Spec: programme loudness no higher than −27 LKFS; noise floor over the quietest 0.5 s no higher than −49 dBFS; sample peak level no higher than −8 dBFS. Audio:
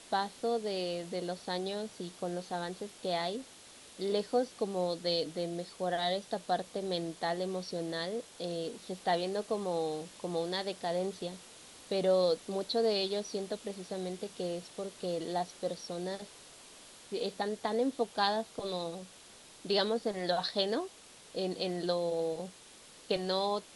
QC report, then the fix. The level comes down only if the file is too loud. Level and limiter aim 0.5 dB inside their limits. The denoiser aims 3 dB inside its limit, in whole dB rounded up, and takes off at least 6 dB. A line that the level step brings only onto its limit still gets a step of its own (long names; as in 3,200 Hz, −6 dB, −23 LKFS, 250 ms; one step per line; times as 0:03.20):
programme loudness −34.5 LKFS: in spec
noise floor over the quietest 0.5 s −55 dBFS: in spec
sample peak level −15.5 dBFS: in spec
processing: no processing needed